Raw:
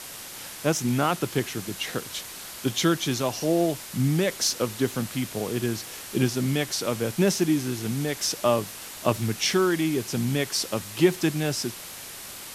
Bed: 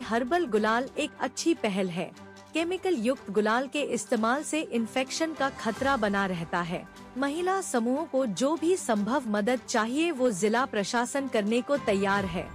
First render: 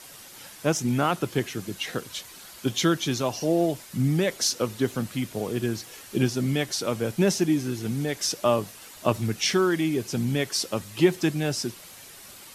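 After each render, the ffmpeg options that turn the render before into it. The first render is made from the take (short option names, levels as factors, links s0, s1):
-af "afftdn=nr=8:nf=-40"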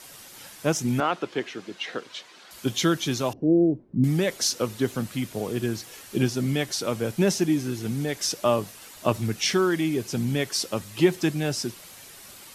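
-filter_complex "[0:a]asettb=1/sr,asplit=3[s0][s1][s2];[s0]atrim=end=1.004[s3];[s1]atrim=start=1:end=2.51,asetpts=PTS-STARTPTS,afade=t=in:d=0.004:c=qsin,afade=t=out:st=1.506:d=0.004:c=qsin,highpass=300,lowpass=4200[s4];[s2]atrim=start=2.506[s5];[s3][s4]acrossfade=d=0.004:c1=hsin:c2=qsin[s6];[s6][s5]acrossfade=d=0.004:c1=qsin:c2=hsin,asettb=1/sr,asplit=3[s7][s8][s9];[s7]atrim=end=3.334[s10];[s8]atrim=start=3.33:end=4.04,asetpts=PTS-STARTPTS,afade=t=in:d=0.004:c=qsin,afade=t=out:st=0.706:d=0.004:c=qsin,lowpass=f=310:t=q:w=2.2[s11];[s9]atrim=start=4.036[s12];[s10][s11]acrossfade=d=0.004:c1=hsin:c2=qsin[s13];[s13][s12]acrossfade=d=0.004:c1=qsin:c2=hsin"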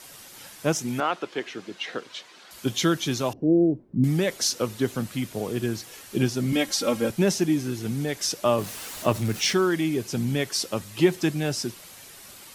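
-filter_complex "[0:a]asettb=1/sr,asplit=3[s0][s1][s2];[s0]atrim=end=0.804[s3];[s1]atrim=start=0.8:end=1.47,asetpts=PTS-STARTPTS,afade=t=in:d=0.004:c=qsin,afade=t=out:st=0.666:d=0.004:c=qsin,lowshelf=f=200:g=-10[s4];[s2]atrim=start=1.466[s5];[s3][s4]acrossfade=d=0.004:c1=hsin:c2=qsin[s6];[s6][s5]acrossfade=d=0.004:c1=qsin:c2=hsin,asettb=1/sr,asplit=3[s7][s8][s9];[s7]atrim=end=6.524[s10];[s8]atrim=start=6.52:end=7.1,asetpts=PTS-STARTPTS,afade=t=in:d=0.004:c=qsin,afade=t=out:st=0.576:d=0.004:c=qsin,aecho=1:1:3.7:0.97,atrim=end_sample=25578[s11];[s9]atrim=start=7.096[s12];[s10][s11]acrossfade=d=0.004:c1=hsin:c2=qsin[s13];[s13][s12]acrossfade=d=0.004:c1=qsin:c2=hsin,asettb=1/sr,asplit=3[s14][s15][s16];[s14]atrim=end=8.584[s17];[s15]atrim=start=8.58:end=9.53,asetpts=PTS-STARTPTS,afade=t=in:d=0.004:c=qsin,afade=t=out:st=0.946:d=0.004:c=qsin,aeval=exprs='val(0)+0.5*0.0178*sgn(val(0))':c=same[s18];[s16]atrim=start=9.526[s19];[s17][s18]acrossfade=d=0.004:c1=hsin:c2=qsin[s20];[s20][s19]acrossfade=d=0.004:c1=qsin:c2=hsin"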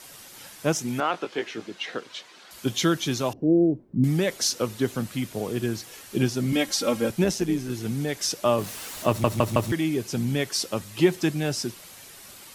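-filter_complex "[0:a]asettb=1/sr,asplit=3[s0][s1][s2];[s0]atrim=end=1.124[s3];[s1]atrim=start=1.12:end=1.66,asetpts=PTS-STARTPTS,afade=t=in:d=0.004:c=qsin,afade=t=out:st=0.536:d=0.004:c=qsin,asplit=2[s4][s5];[s5]adelay=18,volume=0.531[s6];[s4][s6]amix=inputs=2:normalize=0,atrim=end_sample=23814[s7];[s2]atrim=start=1.656[s8];[s3][s7]acrossfade=d=0.004:c1=hsin:c2=qsin[s9];[s9][s8]acrossfade=d=0.004:c1=qsin:c2=hsin,asettb=1/sr,asplit=3[s10][s11][s12];[s10]atrim=end=7.244[s13];[s11]atrim=start=7.24:end=7.7,asetpts=PTS-STARTPTS,afade=t=in:d=0.004:c=qsin,afade=t=out:st=0.456:d=0.004:c=qsin,tremolo=f=120:d=0.519[s14];[s12]atrim=start=7.696[s15];[s13][s14]acrossfade=d=0.004:c1=hsin:c2=qsin[s16];[s16][s15]acrossfade=d=0.004:c1=qsin:c2=hsin,asplit=5[s17][s18][s19][s20][s21];[s17]atrim=end=9.242[s22];[s18]atrim=start=9.078:end=9.242[s23];[s19]atrim=start=9.078:end=9.242[s24];[s20]atrim=start=9.078:end=9.242[s25];[s21]atrim=start=9.718[s26];[s22][s23]acrossfade=d=0.004:c1=hsin:c2=hsin[s27];[s27][s24]acrossfade=d=0.004:c1=hsin:c2=hsin[s28];[s28][s25]acrossfade=d=0.004:c1=hsin:c2=hsin[s29];[s29][s26]acrossfade=d=0.004:c1=hsin:c2=hsin"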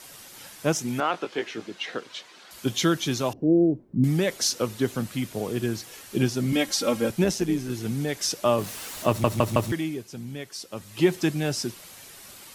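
-filter_complex "[0:a]asplit=3[s0][s1][s2];[s0]atrim=end=10.06,asetpts=PTS-STARTPTS,afade=t=out:st=9.63:d=0.43:silence=0.298538[s3];[s1]atrim=start=10.06:end=10.68,asetpts=PTS-STARTPTS,volume=0.299[s4];[s2]atrim=start=10.68,asetpts=PTS-STARTPTS,afade=t=in:d=0.43:silence=0.298538[s5];[s3][s4][s5]concat=n=3:v=0:a=1"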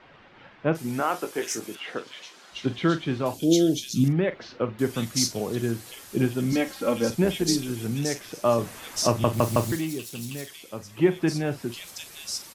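-filter_complex "[0:a]asplit=2[s0][s1];[s1]adelay=43,volume=0.224[s2];[s0][s2]amix=inputs=2:normalize=0,acrossover=split=2800[s3][s4];[s4]adelay=750[s5];[s3][s5]amix=inputs=2:normalize=0"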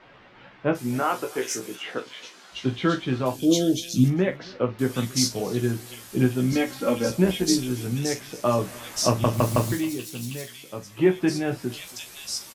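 -filter_complex "[0:a]asplit=2[s0][s1];[s1]adelay=16,volume=0.562[s2];[s0][s2]amix=inputs=2:normalize=0,aecho=1:1:275:0.0668"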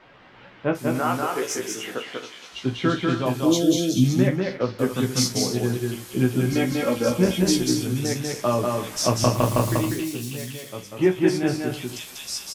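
-af "aecho=1:1:192.4|274.1:0.708|0.251"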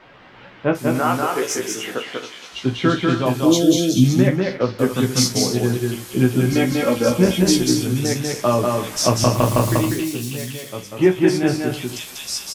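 -af "volume=1.68,alimiter=limit=0.708:level=0:latency=1"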